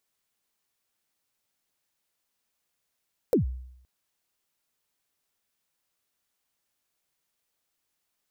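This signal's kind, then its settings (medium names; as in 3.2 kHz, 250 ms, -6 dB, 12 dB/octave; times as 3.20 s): kick drum length 0.52 s, from 550 Hz, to 63 Hz, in 121 ms, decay 0.75 s, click on, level -16 dB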